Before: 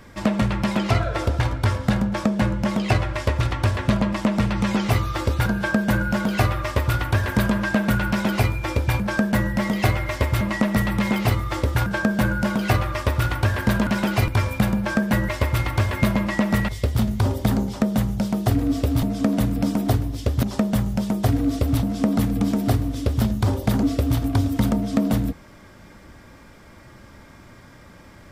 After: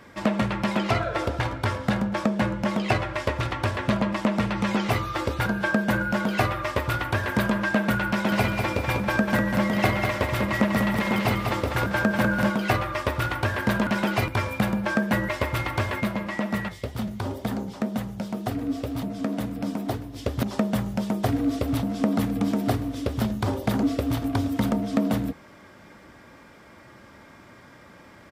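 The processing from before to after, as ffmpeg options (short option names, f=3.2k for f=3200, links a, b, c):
-filter_complex "[0:a]asplit=3[a][b][c];[a]afade=t=out:st=8.3:d=0.02[d];[b]aecho=1:1:196|392|588|784|980:0.562|0.231|0.0945|0.0388|0.0159,afade=t=in:st=8.3:d=0.02,afade=t=out:st=12.49:d=0.02[e];[c]afade=t=in:st=12.49:d=0.02[f];[d][e][f]amix=inputs=3:normalize=0,asplit=3[g][h][i];[g]afade=t=out:st=15.99:d=0.02[j];[h]flanger=delay=3.9:depth=7.8:regen=73:speed=2:shape=sinusoidal,afade=t=in:st=15.99:d=0.02,afade=t=out:st=20.15:d=0.02[k];[i]afade=t=in:st=20.15:d=0.02[l];[j][k][l]amix=inputs=3:normalize=0,highpass=f=190:p=1,bass=f=250:g=-1,treble=f=4k:g=-5"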